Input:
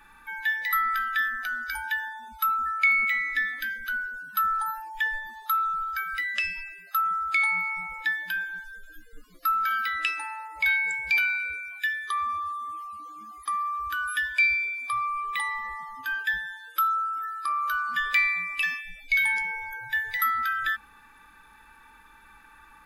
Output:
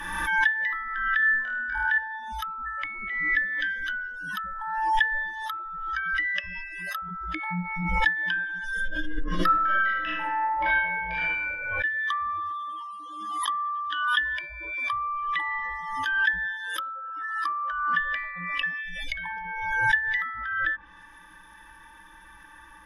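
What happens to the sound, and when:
0:01.20–0:01.98: flutter between parallel walls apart 4.4 metres, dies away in 0.59 s
0:07.02–0:08.03: low shelf with overshoot 450 Hz +11 dB, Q 1.5
0:08.74–0:11.50: thrown reverb, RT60 0.87 s, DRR −9.5 dB
0:12.51–0:14.20: loudspeaker in its box 270–9,500 Hz, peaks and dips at 360 Hz −7 dB, 900 Hz +7 dB, 1,500 Hz −3 dB, 2,300 Hz −9 dB, 3,300 Hz +9 dB, 6,000 Hz −7 dB
whole clip: treble cut that deepens with the level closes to 1,100 Hz, closed at −24 dBFS; EQ curve with evenly spaced ripples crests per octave 1.2, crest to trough 14 dB; background raised ahead of every attack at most 38 dB per second; level +1.5 dB

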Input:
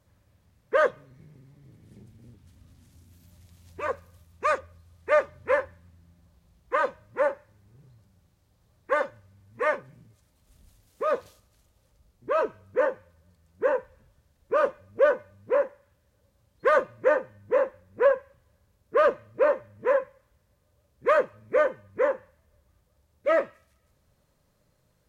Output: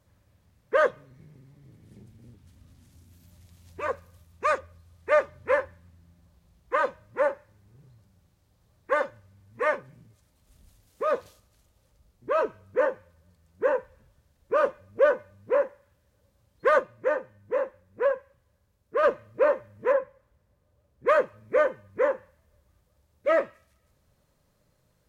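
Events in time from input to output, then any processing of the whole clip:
0:16.79–0:19.03: clip gain −4 dB
0:19.92–0:21.08: high-shelf EQ 2,100 Hz −8 dB

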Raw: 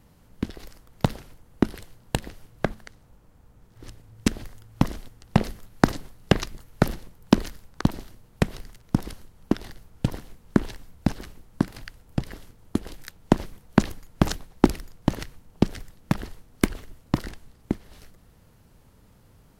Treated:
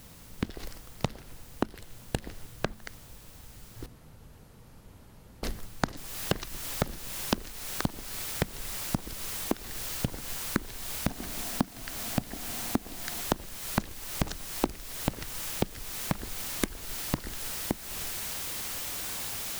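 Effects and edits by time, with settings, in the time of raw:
0:03.86–0:05.43: fill with room tone
0:05.97: noise floor change −58 dB −40 dB
0:11.07–0:13.21: hollow resonant body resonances 240/700 Hz, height 9 dB, ringing for 25 ms
whole clip: downward compressor 4 to 1, threshold −32 dBFS; level +4 dB

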